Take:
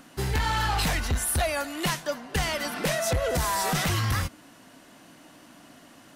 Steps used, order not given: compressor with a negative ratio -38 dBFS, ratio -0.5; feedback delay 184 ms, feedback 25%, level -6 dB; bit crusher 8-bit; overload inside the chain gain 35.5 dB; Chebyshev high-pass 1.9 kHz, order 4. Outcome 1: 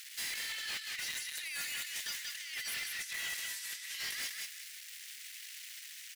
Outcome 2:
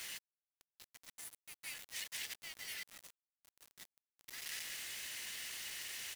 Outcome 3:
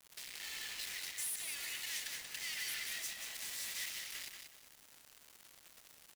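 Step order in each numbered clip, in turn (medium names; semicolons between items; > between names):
bit crusher > Chebyshev high-pass > compressor with a negative ratio > feedback delay > overload inside the chain; feedback delay > compressor with a negative ratio > overload inside the chain > Chebyshev high-pass > bit crusher; overload inside the chain > compressor with a negative ratio > Chebyshev high-pass > bit crusher > feedback delay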